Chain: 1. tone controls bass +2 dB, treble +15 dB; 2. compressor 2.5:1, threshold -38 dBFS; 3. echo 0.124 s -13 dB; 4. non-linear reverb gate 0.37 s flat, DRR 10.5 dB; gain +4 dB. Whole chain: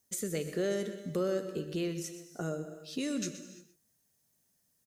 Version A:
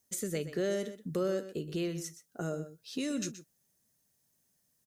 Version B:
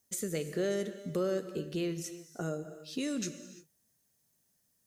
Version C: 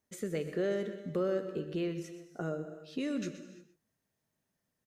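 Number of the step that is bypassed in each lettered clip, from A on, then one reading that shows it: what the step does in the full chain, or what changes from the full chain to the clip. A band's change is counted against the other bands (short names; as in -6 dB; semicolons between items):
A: 4, echo-to-direct -8.5 dB to -13.0 dB; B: 3, echo-to-direct -8.5 dB to -10.5 dB; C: 1, 8 kHz band -11.5 dB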